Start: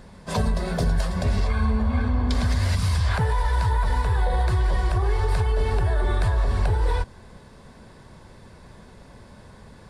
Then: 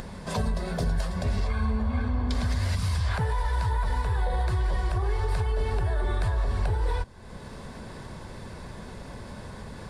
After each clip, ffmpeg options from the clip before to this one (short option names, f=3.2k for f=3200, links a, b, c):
-af "acompressor=mode=upward:threshold=-24dB:ratio=2.5,volume=-4.5dB"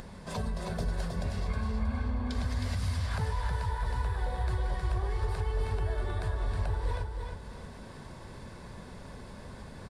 -af "aecho=1:1:316|632|948|1264:0.562|0.202|0.0729|0.0262,volume=-6.5dB"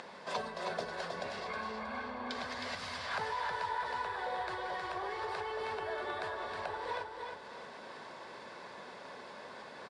-af "highpass=500,lowpass=4.7k,volume=4dB"